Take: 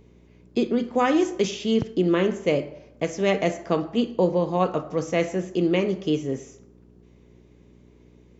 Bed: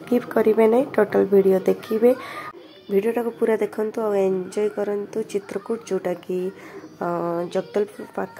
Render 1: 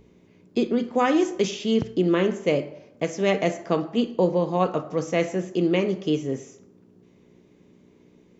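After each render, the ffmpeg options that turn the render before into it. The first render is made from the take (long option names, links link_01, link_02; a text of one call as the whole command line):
ffmpeg -i in.wav -af "bandreject=frequency=60:width_type=h:width=4,bandreject=frequency=120:width_type=h:width=4" out.wav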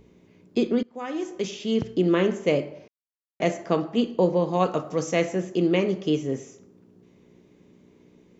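ffmpeg -i in.wav -filter_complex "[0:a]asettb=1/sr,asplit=3[link_01][link_02][link_03];[link_01]atrim=end=4.534[link_04];[link_02]atrim=start=4.53:end=5.2,asetpts=PTS-STARTPTS,afade=type=in:duration=0.004:curve=qsin,afade=type=out:start_time=0.666:duration=0.004:curve=qsin,aemphasis=mode=production:type=cd[link_05];[link_03]atrim=start=5.196[link_06];[link_04][link_05]acrossfade=duration=0.004:curve1=hsin:curve2=qsin[link_07];[link_07][link_06]acrossfade=duration=0.004:curve1=qsin:curve2=hsin,asplit=4[link_08][link_09][link_10][link_11];[link_08]atrim=end=0.83,asetpts=PTS-STARTPTS,afade=type=out:start_time=0.826:duration=0.004:curve=hsin:silence=0.0707946[link_12];[link_09]atrim=start=0.83:end=2.88,asetpts=PTS-STARTPTS,afade=type=in:duration=1.21:silence=0.0707946,afade=type=out:start_time=2.046:duration=0.004:curve=hsin[link_13];[link_10]atrim=start=2.88:end=3.4,asetpts=PTS-STARTPTS,volume=0[link_14];[link_11]atrim=start=3.4,asetpts=PTS-STARTPTS,afade=type=in:duration=0.004:curve=hsin[link_15];[link_12][link_13][link_14][link_15]concat=n=4:v=0:a=1" out.wav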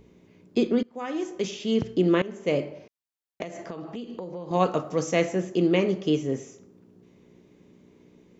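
ffmpeg -i in.wav -filter_complex "[0:a]asettb=1/sr,asplit=3[link_01][link_02][link_03];[link_01]atrim=end=3.424[link_04];[link_02]atrim=start=3.42:end=4.51,asetpts=PTS-STARTPTS,afade=type=in:duration=0.004:curve=qsin,afade=type=out:start_time=1.086:duration=0.004:curve=qsin,acompressor=threshold=-32dB:ratio=10:attack=3.2:release=140:knee=1:detection=peak[link_05];[link_03]atrim=start=4.506[link_06];[link_04][link_05]acrossfade=duration=0.004:curve1=hsin:curve2=qsin[link_07];[link_07][link_06]acrossfade=duration=0.004:curve1=qsin:curve2=hsin,asplit=2[link_08][link_09];[link_08]atrim=end=2.22,asetpts=PTS-STARTPTS,afade=type=out:start_time=2.216:duration=0.004:curve=hsin:silence=0.0944061[link_10];[link_09]atrim=start=2.22,asetpts=PTS-STARTPTS,afade=type=in:duration=0.42:silence=0.0944061[link_11];[link_10][link_11]concat=n=2:v=0:a=1" out.wav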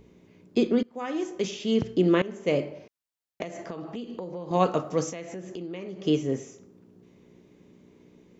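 ffmpeg -i in.wav -filter_complex "[0:a]asettb=1/sr,asplit=3[link_01][link_02][link_03];[link_01]atrim=end=5.094[link_04];[link_02]atrim=start=5.09:end=6.05,asetpts=PTS-STARTPTS,afade=type=in:duration=0.004:curve=qsin,afade=type=out:start_time=0.956:duration=0.004:curve=qsin,acompressor=threshold=-35dB:ratio=5:attack=3.2:release=140:knee=1:detection=peak[link_05];[link_03]atrim=start=6.046[link_06];[link_04][link_05]acrossfade=duration=0.004:curve1=hsin:curve2=qsin[link_07];[link_07][link_06]acrossfade=duration=0.004:curve1=qsin:curve2=hsin" out.wav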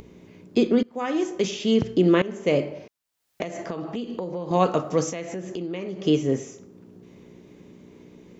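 ffmpeg -i in.wav -filter_complex "[0:a]asplit=2[link_01][link_02];[link_02]alimiter=limit=-19dB:level=0:latency=1:release=190,volume=-1.5dB[link_03];[link_01][link_03]amix=inputs=2:normalize=0,acompressor=mode=upward:threshold=-42dB:ratio=2.5" out.wav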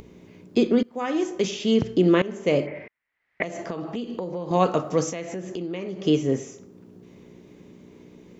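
ffmpeg -i in.wav -filter_complex "[0:a]asplit=3[link_01][link_02][link_03];[link_01]afade=type=out:start_time=2.66:duration=0.02[link_04];[link_02]lowpass=frequency=2000:width_type=q:width=7.4,afade=type=in:start_time=2.66:duration=0.02,afade=type=out:start_time=3.42:duration=0.02[link_05];[link_03]afade=type=in:start_time=3.42:duration=0.02[link_06];[link_04][link_05][link_06]amix=inputs=3:normalize=0" out.wav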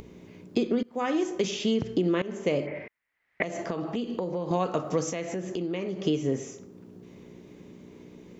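ffmpeg -i in.wav -af "acompressor=threshold=-22dB:ratio=6" out.wav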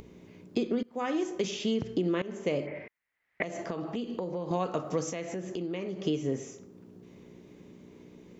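ffmpeg -i in.wav -af "volume=-3.5dB" out.wav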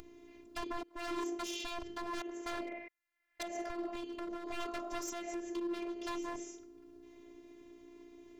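ffmpeg -i in.wav -af "aeval=exprs='0.0299*(abs(mod(val(0)/0.0299+3,4)-2)-1)':channel_layout=same,afftfilt=real='hypot(re,im)*cos(PI*b)':imag='0':win_size=512:overlap=0.75" out.wav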